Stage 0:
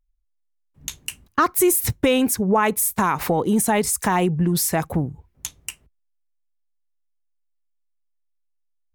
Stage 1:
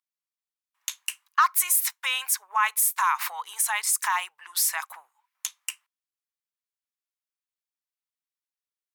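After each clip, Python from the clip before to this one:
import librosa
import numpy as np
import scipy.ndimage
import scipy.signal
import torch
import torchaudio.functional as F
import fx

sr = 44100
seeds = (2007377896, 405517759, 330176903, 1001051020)

y = scipy.signal.sosfilt(scipy.signal.ellip(4, 1.0, 80, 1000.0, 'highpass', fs=sr, output='sos'), x)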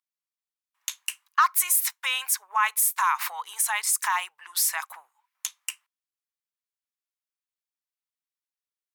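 y = x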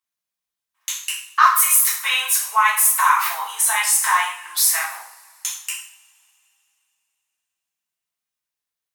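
y = fx.rev_double_slope(x, sr, seeds[0], early_s=0.52, late_s=3.0, knee_db=-27, drr_db=-5.5)
y = F.gain(torch.from_numpy(y), 1.0).numpy()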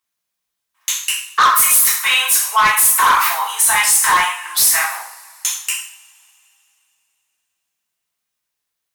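y = 10.0 ** (-15.0 / 20.0) * np.tanh(x / 10.0 ** (-15.0 / 20.0))
y = F.gain(torch.from_numpy(y), 7.5).numpy()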